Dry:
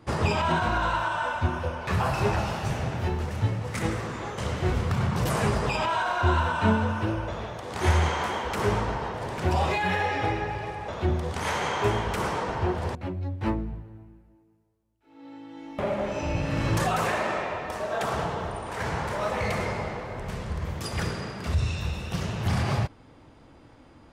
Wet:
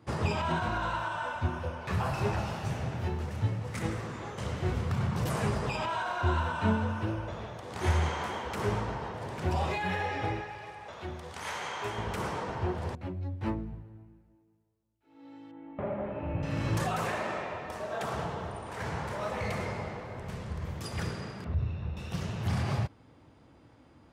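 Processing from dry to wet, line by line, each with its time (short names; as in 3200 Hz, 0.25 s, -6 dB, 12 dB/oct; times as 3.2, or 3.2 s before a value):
10.41–11.98 low shelf 480 Hz -12 dB
15.51–16.43 Gaussian blur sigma 3.7 samples
21.44–21.97 tape spacing loss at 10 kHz 41 dB
whole clip: HPF 74 Hz; low shelf 170 Hz +5 dB; gain -6.5 dB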